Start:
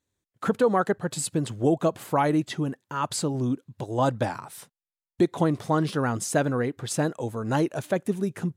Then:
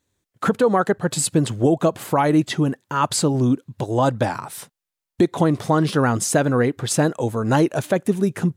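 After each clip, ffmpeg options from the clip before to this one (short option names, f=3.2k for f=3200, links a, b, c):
-af "alimiter=limit=-15.5dB:level=0:latency=1:release=215,volume=8dB"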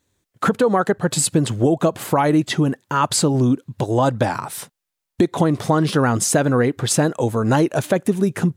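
-af "acompressor=threshold=-19dB:ratio=2,volume=4dB"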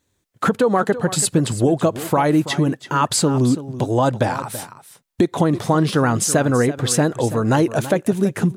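-af "aecho=1:1:331:0.2"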